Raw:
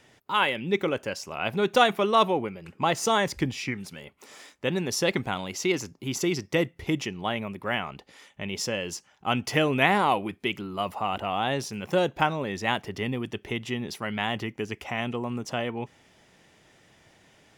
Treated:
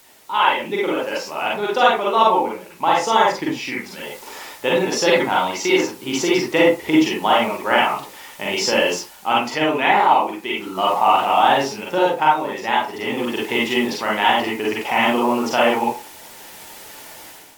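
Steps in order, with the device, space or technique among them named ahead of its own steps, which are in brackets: filmed off a television (band-pass 270–6400 Hz; peaking EQ 890 Hz +8.5 dB 0.25 oct; reverberation RT60 0.30 s, pre-delay 38 ms, DRR -4.5 dB; white noise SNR 28 dB; level rider gain up to 11 dB; trim -1 dB; AAC 96 kbps 44.1 kHz)

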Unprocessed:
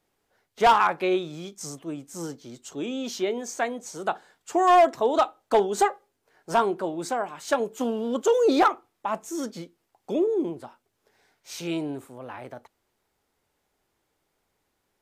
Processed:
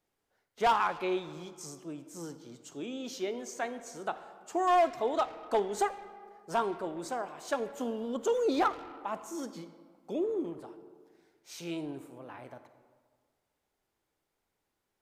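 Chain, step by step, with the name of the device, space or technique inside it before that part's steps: saturated reverb return (on a send at -10 dB: reverberation RT60 1.6 s, pre-delay 41 ms + saturation -23.5 dBFS, distortion -7 dB); on the sum: trim -8 dB

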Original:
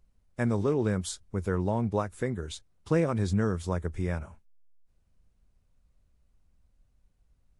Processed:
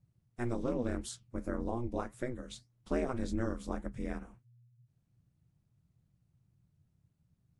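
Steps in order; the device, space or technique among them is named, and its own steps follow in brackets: alien voice (ring modulator 120 Hz; flange 1.8 Hz, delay 5.1 ms, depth 8.3 ms, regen -76%); 1.43–1.98 s: peaking EQ 3.7 kHz -> 1.2 kHz -13 dB 0.58 oct

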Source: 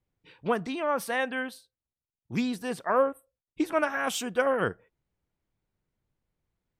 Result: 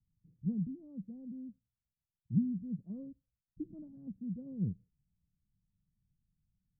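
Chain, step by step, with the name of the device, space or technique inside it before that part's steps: the neighbour's flat through the wall (low-pass 190 Hz 24 dB/octave; peaking EQ 190 Hz +5.5 dB); trim +1.5 dB

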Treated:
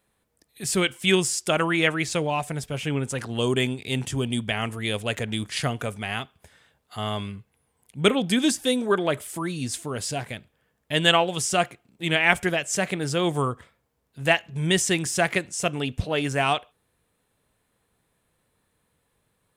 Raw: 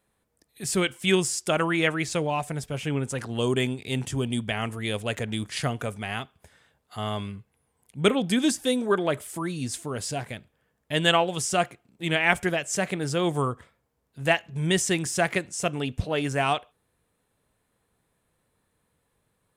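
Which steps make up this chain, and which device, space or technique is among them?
presence and air boost (peaking EQ 3.1 kHz +2.5 dB 1.5 oct; treble shelf 12 kHz +3 dB); trim +1 dB

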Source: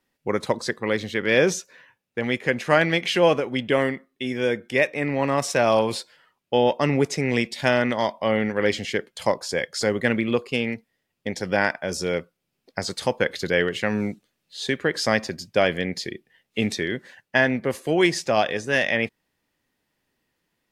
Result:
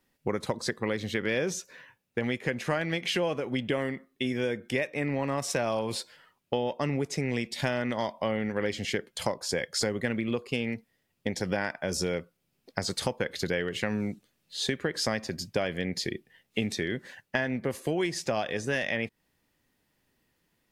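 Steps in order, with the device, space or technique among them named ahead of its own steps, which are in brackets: ASMR close-microphone chain (bass shelf 210 Hz +5.5 dB; compression 6:1, threshold -26 dBFS, peak gain reduction 13.5 dB; treble shelf 8.5 kHz +4.5 dB)

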